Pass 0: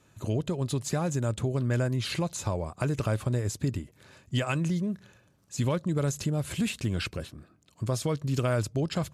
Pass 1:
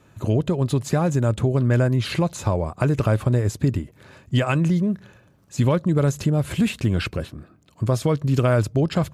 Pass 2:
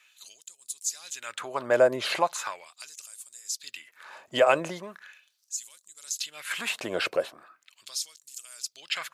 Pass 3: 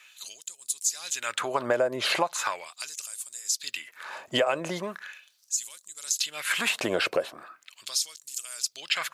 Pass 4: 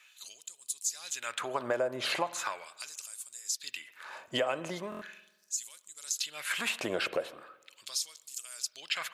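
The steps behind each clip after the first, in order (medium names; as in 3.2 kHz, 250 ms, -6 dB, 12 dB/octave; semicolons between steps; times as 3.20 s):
peaking EQ 7.5 kHz -8 dB 2.4 oct; trim +8.5 dB
LFO high-pass sine 0.39 Hz 550–7900 Hz
compression 6:1, threshold -29 dBFS, peak gain reduction 13.5 dB; trim +7 dB
spring tank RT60 1.1 s, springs 47 ms, chirp 50 ms, DRR 16 dB; buffer glitch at 4.90 s, samples 1024, times 4; trim -6 dB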